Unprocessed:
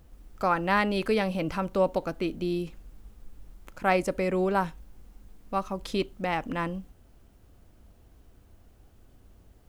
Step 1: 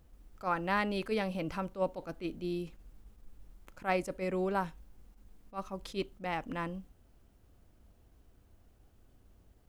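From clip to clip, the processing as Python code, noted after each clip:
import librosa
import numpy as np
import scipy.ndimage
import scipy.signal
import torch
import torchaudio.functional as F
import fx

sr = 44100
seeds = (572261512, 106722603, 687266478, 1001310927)

y = fx.attack_slew(x, sr, db_per_s=290.0)
y = F.gain(torch.from_numpy(y), -6.5).numpy()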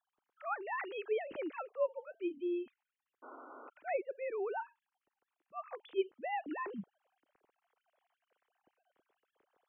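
y = fx.sine_speech(x, sr)
y = fx.rider(y, sr, range_db=5, speed_s=0.5)
y = fx.spec_paint(y, sr, seeds[0], shape='noise', start_s=3.22, length_s=0.48, low_hz=240.0, high_hz=1500.0, level_db=-49.0)
y = F.gain(torch.from_numpy(y), -3.0).numpy()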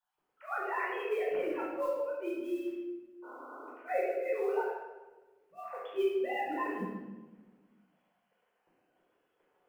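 y = fx.mod_noise(x, sr, seeds[1], snr_db=31)
y = fx.room_shoebox(y, sr, seeds[2], volume_m3=770.0, walls='mixed', distance_m=4.7)
y = F.gain(torch.from_numpy(y), -5.5).numpy()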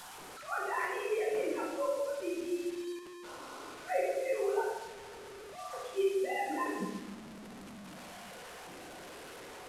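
y = fx.delta_mod(x, sr, bps=64000, step_db=-42.0)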